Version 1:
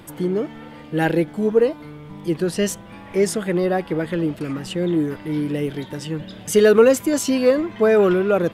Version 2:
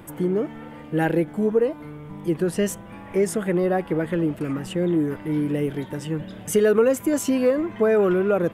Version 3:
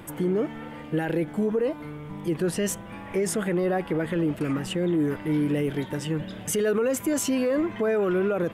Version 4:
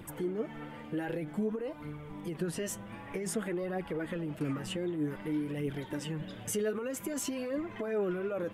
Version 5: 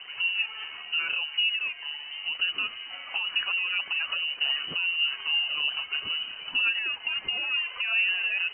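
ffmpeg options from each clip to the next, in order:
ffmpeg -i in.wav -af "equalizer=frequency=4400:width=1.2:gain=-10,acompressor=threshold=-18dB:ratio=2" out.wav
ffmpeg -i in.wav -af "equalizer=frequency=3600:width=0.45:gain=3.5,alimiter=limit=-17.5dB:level=0:latency=1:release=27" out.wav
ffmpeg -i in.wav -af "acompressor=threshold=-25dB:ratio=6,flanger=delay=0.2:depth=9.8:regen=36:speed=0.53:shape=triangular,volume=-2dB" out.wav
ffmpeg -i in.wav -af "aeval=exprs='sgn(val(0))*max(abs(val(0))-0.001,0)':channel_layout=same,lowpass=frequency=2600:width_type=q:width=0.5098,lowpass=frequency=2600:width_type=q:width=0.6013,lowpass=frequency=2600:width_type=q:width=0.9,lowpass=frequency=2600:width_type=q:width=2.563,afreqshift=-3100,volume=6.5dB" out.wav

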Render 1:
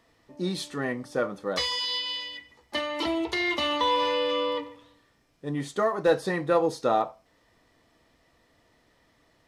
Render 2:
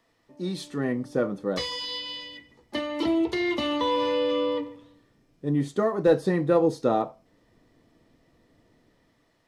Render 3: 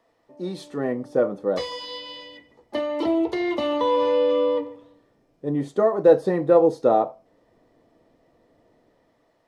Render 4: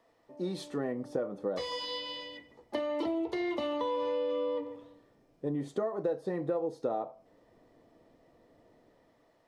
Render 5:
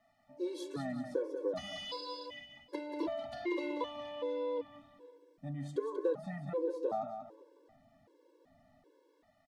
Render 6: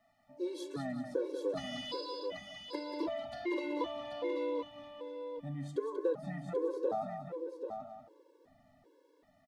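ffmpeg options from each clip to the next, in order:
ffmpeg -i in.wav -filter_complex "[0:a]equalizer=frequency=60:width_type=o:width=0.86:gain=-9,acrossover=split=440|3900[link_01][link_02][link_03];[link_01]dynaudnorm=framelen=150:gausssize=9:maxgain=11.5dB[link_04];[link_04][link_02][link_03]amix=inputs=3:normalize=0,volume=-4dB" out.wav
ffmpeg -i in.wav -af "equalizer=frequency=620:width=0.72:gain=11.5,volume=-4.5dB" out.wav
ffmpeg -i in.wav -af "acompressor=threshold=-28dB:ratio=6,volume=-2dB" out.wav
ffmpeg -i in.wav -af "aecho=1:1:187|374|561|748:0.422|0.152|0.0547|0.0197,afftfilt=real='re*gt(sin(2*PI*1.3*pts/sr)*(1-2*mod(floor(b*sr/1024/290),2)),0)':imag='im*gt(sin(2*PI*1.3*pts/sr)*(1-2*mod(floor(b*sr/1024/290),2)),0)':win_size=1024:overlap=0.75,volume=-1dB" out.wav
ffmpeg -i in.wav -af "aecho=1:1:785:0.473" out.wav

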